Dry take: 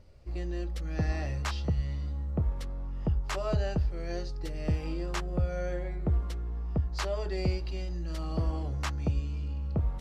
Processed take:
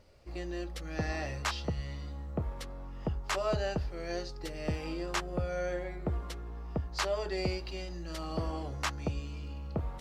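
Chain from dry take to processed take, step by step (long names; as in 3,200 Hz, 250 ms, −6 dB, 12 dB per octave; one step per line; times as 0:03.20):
low-shelf EQ 220 Hz −11.5 dB
level +3 dB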